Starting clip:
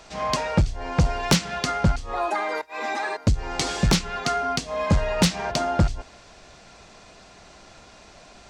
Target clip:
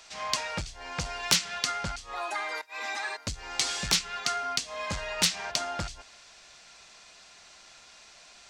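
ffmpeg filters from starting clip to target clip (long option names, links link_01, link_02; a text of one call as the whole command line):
ffmpeg -i in.wav -af "tiltshelf=frequency=920:gain=-9.5,volume=-8.5dB" out.wav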